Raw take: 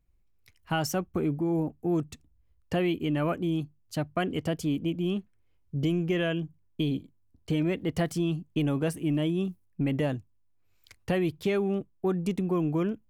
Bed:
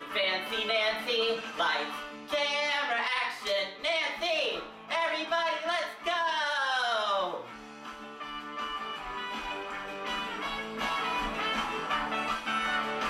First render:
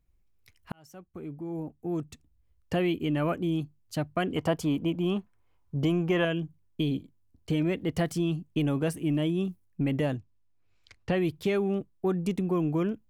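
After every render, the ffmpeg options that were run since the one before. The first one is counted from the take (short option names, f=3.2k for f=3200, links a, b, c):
-filter_complex "[0:a]asettb=1/sr,asplit=3[a][b][c];[a]atrim=end=4.364[d];[b]atrim=start=4.36:end=6.25,asetpts=PTS-STARTPTS,afade=t=in:d=0.004:c=qsin,afade=t=out:st=1.886:d=0.004:c=qsin,equalizer=f=960:t=o:w=1.1:g=12[e];[c]atrim=start=6.246[f];[d][e]acrossfade=d=0.004:c1=hsin:c2=qsin[g];[g][f]acrossfade=d=0.004:c1=qsin:c2=hsin,asettb=1/sr,asplit=3[h][i][j];[h]atrim=end=10.174[k];[i]atrim=start=10.17:end=11.18,asetpts=PTS-STARTPTS,afade=t=in:d=0.004:c=qsin,afade=t=out:st=1.006:d=0.004:c=qsin,lowpass=5.5k[l];[j]atrim=start=11.176[m];[k][l]acrossfade=d=0.004:c1=hsin:c2=qsin[n];[n][m]acrossfade=d=0.004:c1=qsin:c2=hsin,asplit=2[o][p];[o]atrim=end=0.72,asetpts=PTS-STARTPTS,afade=t=out:st=0.716:d=0.004:c=hsin[q];[p]atrim=start=0.72,asetpts=PTS-STARTPTS,afade=t=in:d=2.02[r];[q][r]concat=n=2:v=0:a=1"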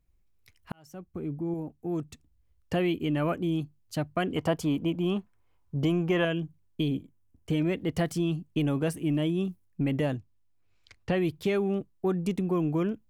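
-filter_complex "[0:a]asettb=1/sr,asplit=3[a][b][c];[a]atrim=end=0.864[d];[b]atrim=start=0.86:end=1.54,asetpts=PTS-STARTPTS,afade=t=in:d=0.004:c=qsin,afade=t=out:st=0.676:d=0.004:c=qsin,lowshelf=f=470:g=7[e];[c]atrim=start=1.536[f];[d][e]acrossfade=d=0.004:c1=hsin:c2=qsin[g];[g][f]acrossfade=d=0.004:c1=qsin:c2=hsin,asettb=1/sr,asplit=3[h][i][j];[h]atrim=end=6.884[k];[i]atrim=start=6.88:end=7.51,asetpts=PTS-STARTPTS,afade=t=in:d=0.004:c=qsin,afade=t=out:st=0.626:d=0.004:c=qsin,equalizer=f=4.3k:t=o:w=0.45:g=-12[l];[j]atrim=start=7.506[m];[k][l]acrossfade=d=0.004:c1=hsin:c2=qsin[n];[n][m]acrossfade=d=0.004:c1=qsin:c2=hsin"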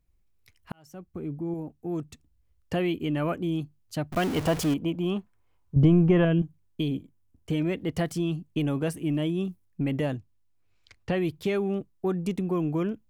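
-filter_complex "[0:a]asettb=1/sr,asplit=3[a][b][c];[a]atrim=end=4.124[d];[b]atrim=start=4.12:end=4.74,asetpts=PTS-STARTPTS,afade=t=in:d=0.004:c=qsin,afade=t=out:st=0.616:d=0.004:c=qsin,aeval=exprs='val(0)+0.5*0.0376*sgn(val(0))':c=same[e];[c]atrim=start=4.736[f];[d][e]acrossfade=d=0.004:c1=hsin:c2=qsin[g];[g][f]acrossfade=d=0.004:c1=qsin:c2=hsin,asettb=1/sr,asplit=3[h][i][j];[h]atrim=end=5.764[k];[i]atrim=start=5.76:end=6.42,asetpts=PTS-STARTPTS,afade=t=in:d=0.004:c=qsin,afade=t=out:st=0.656:d=0.004:c=qsin,aemphasis=mode=reproduction:type=riaa[l];[j]atrim=start=6.416[m];[k][l]acrossfade=d=0.004:c1=hsin:c2=qsin[n];[n][m]acrossfade=d=0.004:c1=qsin:c2=hsin"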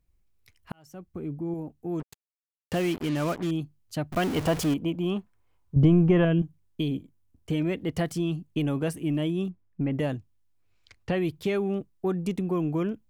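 -filter_complex "[0:a]asettb=1/sr,asplit=3[a][b][c];[a]atrim=end=2.004[d];[b]atrim=start=2:end=3.51,asetpts=PTS-STARTPTS,afade=t=in:d=0.004:c=qsin,afade=t=out:st=1.506:d=0.004:c=qsin,acrusher=bits=5:mix=0:aa=0.5[e];[c]atrim=start=3.506[f];[d][e]acrossfade=d=0.004:c1=hsin:c2=qsin[g];[g][f]acrossfade=d=0.004:c1=qsin:c2=hsin,asplit=3[h][i][j];[h]afade=t=out:st=9.48:d=0.02[k];[i]lowpass=2k,afade=t=in:st=9.48:d=0.02,afade=t=out:st=9.98:d=0.02[l];[j]afade=t=in:st=9.98:d=0.02[m];[k][l][m]amix=inputs=3:normalize=0"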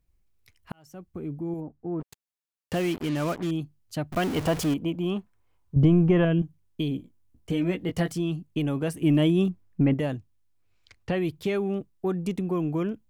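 -filter_complex "[0:a]asplit=3[a][b][c];[a]afade=t=out:st=1.6:d=0.02[d];[b]lowpass=f=1.7k:w=0.5412,lowpass=f=1.7k:w=1.3066,afade=t=in:st=1.6:d=0.02,afade=t=out:st=2:d=0.02[e];[c]afade=t=in:st=2:d=0.02[f];[d][e][f]amix=inputs=3:normalize=0,asettb=1/sr,asplit=3[g][h][i];[g]atrim=end=6.974[j];[h]atrim=start=6.97:end=8.11,asetpts=PTS-STARTPTS,afade=t=in:d=0.004:c=qsin,afade=t=out:st=1.136:d=0.004:c=qsin,asplit=2[k][l];[l]adelay=17,volume=-6dB[m];[k][m]amix=inputs=2:normalize=0,atrim=end_sample=50274[n];[i]atrim=start=8.106[o];[j][n]acrossfade=d=0.004:c1=hsin:c2=qsin[p];[p][o]acrossfade=d=0.004:c1=qsin:c2=hsin,asettb=1/sr,asplit=3[q][r][s];[q]atrim=end=9.024[t];[r]atrim=start=9.02:end=9.94,asetpts=PTS-STARTPTS,afade=t=in:d=0.004:c=qsin,afade=t=out:st=0.916:d=0.004:c=qsin,acontrast=64[u];[s]atrim=start=9.936[v];[t][u]acrossfade=d=0.004:c1=hsin:c2=qsin[w];[w][v]acrossfade=d=0.004:c1=qsin:c2=hsin"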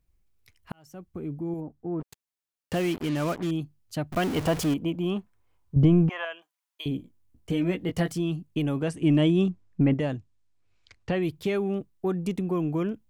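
-filter_complex "[0:a]asettb=1/sr,asplit=3[a][b][c];[a]atrim=end=6.094[d];[b]atrim=start=6.09:end=6.86,asetpts=PTS-STARTPTS,afade=t=in:d=0.004:c=qsin,afade=t=out:st=0.766:d=0.004:c=qsin,highpass=f=770:w=0.5412,highpass=f=770:w=1.3066[e];[c]atrim=start=6.856[f];[d][e]acrossfade=d=0.004:c1=hsin:c2=qsin[g];[g][f]acrossfade=d=0.004:c1=qsin:c2=hsin,asettb=1/sr,asplit=3[h][i][j];[h]atrim=end=8.824[k];[i]atrim=start=8.82:end=11.23,asetpts=PTS-STARTPTS,afade=t=in:d=0.004:c=qsin,afade=t=out:st=2.406:d=0.004:c=qsin,lowpass=f=8.8k:w=0.5412,lowpass=f=8.8k:w=1.3066[l];[j]atrim=start=11.226[m];[k][l]acrossfade=d=0.004:c1=hsin:c2=qsin[n];[n][m]acrossfade=d=0.004:c1=qsin:c2=hsin"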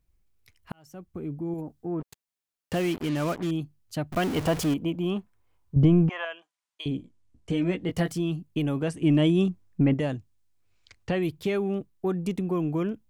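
-filter_complex "[0:a]asettb=1/sr,asplit=3[a][b][c];[a]atrim=end=1.584[d];[b]atrim=start=1.58:end=2,asetpts=PTS-STARTPTS,afade=t=in:d=0.004:c=qsin,afade=t=out:st=0.416:d=0.004:c=qsin,highshelf=f=2.1k:g=10[e];[c]atrim=start=1.996[f];[d][e]acrossfade=d=0.004:c1=hsin:c2=qsin[g];[g][f]acrossfade=d=0.004:c1=qsin:c2=hsin,asettb=1/sr,asplit=3[h][i][j];[h]atrim=end=5.914[k];[i]atrim=start=5.91:end=7.9,asetpts=PTS-STARTPTS,afade=t=in:d=0.004:c=qsin,afade=t=out:st=1.986:d=0.004:c=qsin,lowpass=f=9.4k:w=0.5412,lowpass=f=9.4k:w=1.3066[l];[j]atrim=start=7.896[m];[k][l]acrossfade=d=0.004:c1=hsin:c2=qsin[n];[n][m]acrossfade=d=0.004:c1=qsin:c2=hsin,asettb=1/sr,asplit=3[o][p][q];[o]atrim=end=9.244[r];[p]atrim=start=9.24:end=11.27,asetpts=PTS-STARTPTS,afade=t=in:d=0.004:c=qsin,afade=t=out:st=2.026:d=0.004:c=qsin,highshelf=f=8.1k:g=8.5[s];[q]atrim=start=11.266[t];[r][s]acrossfade=d=0.004:c1=hsin:c2=qsin[u];[u][t]acrossfade=d=0.004:c1=qsin:c2=hsin"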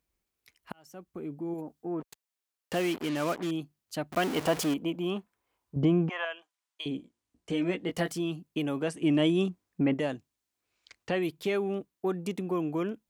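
-af "highpass=71,equalizer=f=98:t=o:w=1.6:g=-15"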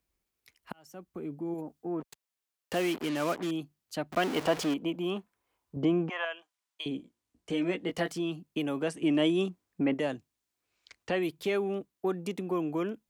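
-filter_complex "[0:a]acrossover=split=210|6300[a][b][c];[a]acompressor=threshold=-43dB:ratio=6[d];[c]alimiter=level_in=13.5dB:limit=-24dB:level=0:latency=1:release=439,volume=-13.5dB[e];[d][b][e]amix=inputs=3:normalize=0"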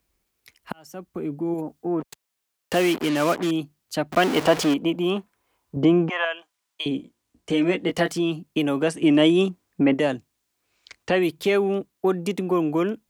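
-af "volume=9dB"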